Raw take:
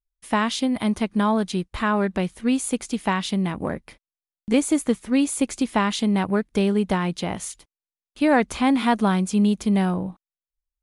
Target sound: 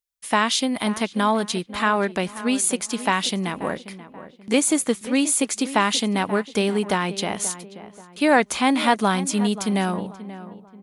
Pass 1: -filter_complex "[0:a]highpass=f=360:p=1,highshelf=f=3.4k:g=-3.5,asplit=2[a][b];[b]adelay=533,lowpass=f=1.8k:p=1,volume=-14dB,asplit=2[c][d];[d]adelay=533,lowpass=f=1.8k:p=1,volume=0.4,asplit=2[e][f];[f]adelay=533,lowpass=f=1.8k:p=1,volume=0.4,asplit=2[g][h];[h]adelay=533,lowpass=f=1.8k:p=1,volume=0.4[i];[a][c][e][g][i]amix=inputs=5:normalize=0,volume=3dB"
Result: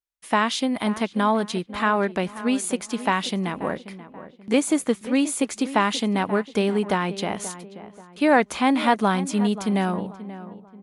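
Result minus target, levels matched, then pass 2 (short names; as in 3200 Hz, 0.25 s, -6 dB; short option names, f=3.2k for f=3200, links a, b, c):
8000 Hz band -6.5 dB
-filter_complex "[0:a]highpass=f=360:p=1,highshelf=f=3.4k:g=5.5,asplit=2[a][b];[b]adelay=533,lowpass=f=1.8k:p=1,volume=-14dB,asplit=2[c][d];[d]adelay=533,lowpass=f=1.8k:p=1,volume=0.4,asplit=2[e][f];[f]adelay=533,lowpass=f=1.8k:p=1,volume=0.4,asplit=2[g][h];[h]adelay=533,lowpass=f=1.8k:p=1,volume=0.4[i];[a][c][e][g][i]amix=inputs=5:normalize=0,volume=3dB"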